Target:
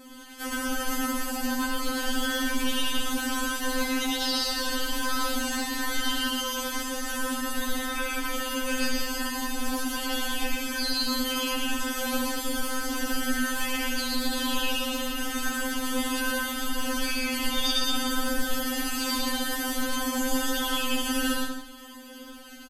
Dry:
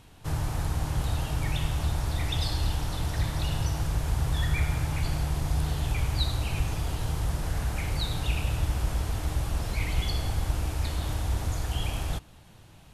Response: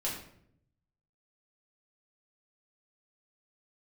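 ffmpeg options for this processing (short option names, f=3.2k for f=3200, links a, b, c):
-filter_complex "[0:a]asetrate=46722,aresample=44100,atempo=0.943874,highpass=f=40:w=0.5412,highpass=f=40:w=1.3066,bandreject=f=1.9k:w=9.4,aecho=1:1:7.1:0.71,atempo=0.57,alimiter=limit=-24dB:level=0:latency=1:release=235,aecho=1:1:116.6|186.6|271.1:0.891|0.501|0.282,asplit=2[a][b];[1:a]atrim=start_sample=2205[c];[b][c]afir=irnorm=-1:irlink=0,volume=-5dB[d];[a][d]amix=inputs=2:normalize=0,afftfilt=real='re*3.46*eq(mod(b,12),0)':imag='im*3.46*eq(mod(b,12),0)':win_size=2048:overlap=0.75,volume=7dB"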